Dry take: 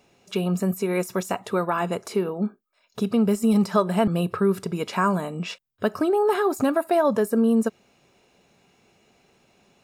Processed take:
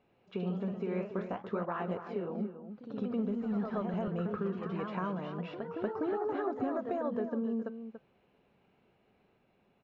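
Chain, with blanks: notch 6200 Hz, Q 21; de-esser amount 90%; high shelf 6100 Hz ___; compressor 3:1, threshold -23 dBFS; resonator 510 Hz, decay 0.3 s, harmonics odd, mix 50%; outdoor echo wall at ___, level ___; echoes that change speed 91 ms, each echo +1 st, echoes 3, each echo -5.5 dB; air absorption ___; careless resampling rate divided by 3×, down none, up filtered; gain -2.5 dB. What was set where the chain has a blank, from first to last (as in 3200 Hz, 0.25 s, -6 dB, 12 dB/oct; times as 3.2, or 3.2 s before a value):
+8 dB, 49 m, -10 dB, 480 m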